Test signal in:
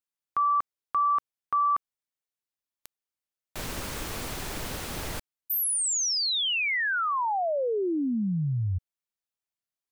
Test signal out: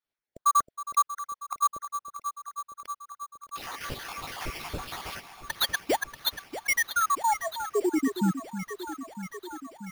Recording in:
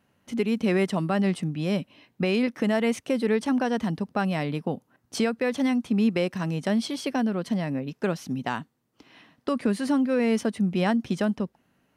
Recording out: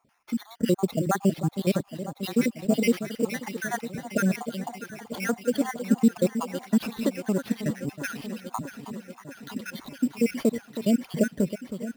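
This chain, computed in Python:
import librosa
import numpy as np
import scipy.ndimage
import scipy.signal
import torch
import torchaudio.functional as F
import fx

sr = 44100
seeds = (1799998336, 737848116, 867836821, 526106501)

y = fx.spec_dropout(x, sr, seeds[0], share_pct=77)
y = fx.echo_alternate(y, sr, ms=318, hz=1100.0, feedback_pct=84, wet_db=-10.5)
y = fx.sample_hold(y, sr, seeds[1], rate_hz=7800.0, jitter_pct=0)
y = F.gain(torch.from_numpy(y), 4.5).numpy()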